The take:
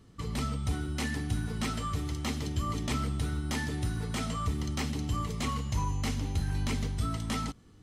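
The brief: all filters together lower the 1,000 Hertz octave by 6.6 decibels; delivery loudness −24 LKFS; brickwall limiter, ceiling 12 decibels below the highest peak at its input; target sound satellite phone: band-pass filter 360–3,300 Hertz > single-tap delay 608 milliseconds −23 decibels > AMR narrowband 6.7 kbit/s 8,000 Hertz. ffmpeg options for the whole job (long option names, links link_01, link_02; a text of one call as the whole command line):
ffmpeg -i in.wav -af "equalizer=frequency=1000:width_type=o:gain=-8.5,alimiter=level_in=8dB:limit=-24dB:level=0:latency=1,volume=-8dB,highpass=360,lowpass=3300,aecho=1:1:608:0.0708,volume=27.5dB" -ar 8000 -c:a libopencore_amrnb -b:a 6700 out.amr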